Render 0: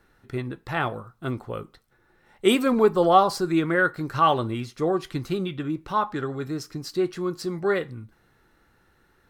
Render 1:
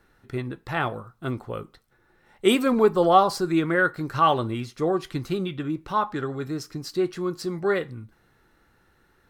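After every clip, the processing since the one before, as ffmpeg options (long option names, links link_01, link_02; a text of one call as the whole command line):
ffmpeg -i in.wav -af anull out.wav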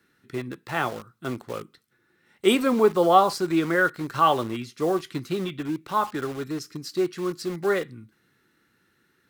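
ffmpeg -i in.wav -filter_complex "[0:a]highpass=160,acrossover=split=450|1200[link_01][link_02][link_03];[link_02]acrusher=bits=6:mix=0:aa=0.000001[link_04];[link_01][link_04][link_03]amix=inputs=3:normalize=0" out.wav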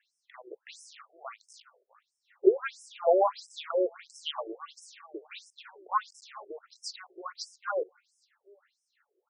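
ffmpeg -i in.wav -af "aecho=1:1:410|820:0.075|0.0232,afftfilt=real='re*between(b*sr/1024,470*pow(7300/470,0.5+0.5*sin(2*PI*1.5*pts/sr))/1.41,470*pow(7300/470,0.5+0.5*sin(2*PI*1.5*pts/sr))*1.41)':imag='im*between(b*sr/1024,470*pow(7300/470,0.5+0.5*sin(2*PI*1.5*pts/sr))/1.41,470*pow(7300/470,0.5+0.5*sin(2*PI*1.5*pts/sr))*1.41)':win_size=1024:overlap=0.75" out.wav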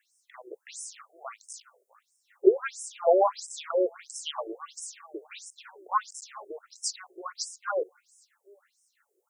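ffmpeg -i in.wav -af "highshelf=frequency=5500:width_type=q:width=1.5:gain=10.5,volume=2dB" out.wav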